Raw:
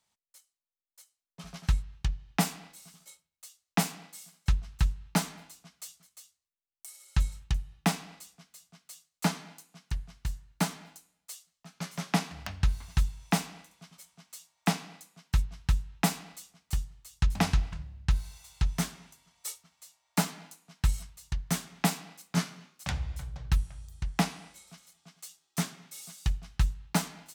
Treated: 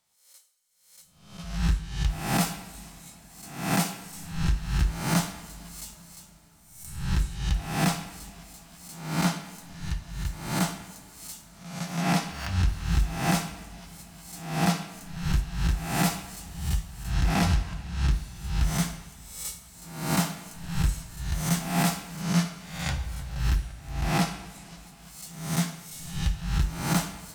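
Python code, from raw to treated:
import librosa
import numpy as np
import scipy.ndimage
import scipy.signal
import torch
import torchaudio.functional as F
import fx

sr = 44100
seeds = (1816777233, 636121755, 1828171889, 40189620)

y = fx.spec_swells(x, sr, rise_s=0.68)
y = np.clip(10.0 ** (18.5 / 20.0) * y, -1.0, 1.0) / 10.0 ** (18.5 / 20.0)
y = fx.rev_double_slope(y, sr, seeds[0], early_s=0.56, late_s=4.9, knee_db=-18, drr_db=6.0)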